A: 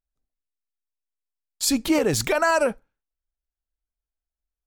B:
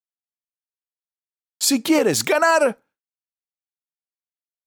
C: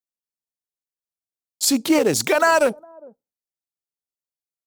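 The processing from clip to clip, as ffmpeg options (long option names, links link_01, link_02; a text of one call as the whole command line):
ffmpeg -i in.wav -af "highpass=190,agate=range=-33dB:threshold=-50dB:ratio=3:detection=peak,volume=4dB" out.wav
ffmpeg -i in.wav -filter_complex "[0:a]acrossover=split=890|3500[link_01][link_02][link_03];[link_01]aecho=1:1:408:0.0708[link_04];[link_02]aeval=exprs='val(0)*gte(abs(val(0)),0.0299)':channel_layout=same[link_05];[link_04][link_05][link_03]amix=inputs=3:normalize=0" out.wav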